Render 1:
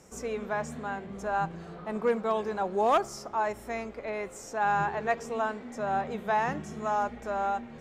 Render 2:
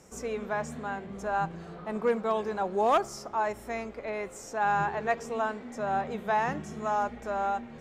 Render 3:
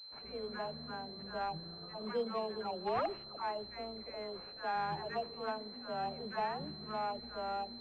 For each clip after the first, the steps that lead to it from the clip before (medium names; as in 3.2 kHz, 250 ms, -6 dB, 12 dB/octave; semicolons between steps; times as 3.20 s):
no audible change
phase dispersion lows, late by 126 ms, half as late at 940 Hz; wavefolder -18 dBFS; class-D stage that switches slowly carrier 4.1 kHz; trim -9 dB